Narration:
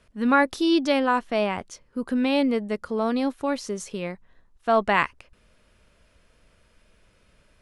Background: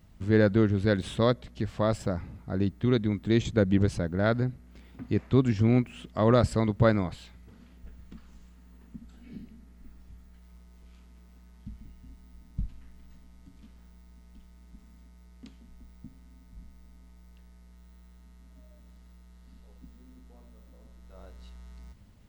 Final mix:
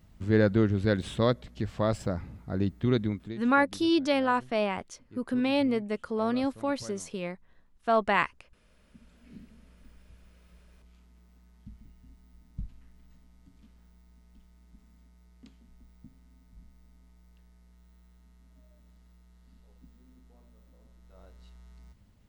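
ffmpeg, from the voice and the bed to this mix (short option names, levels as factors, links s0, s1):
-filter_complex "[0:a]adelay=3200,volume=0.631[s0];[1:a]volume=7.5,afade=t=out:st=3.03:d=0.35:silence=0.0749894,afade=t=in:st=8.64:d=0.73:silence=0.11885[s1];[s0][s1]amix=inputs=2:normalize=0"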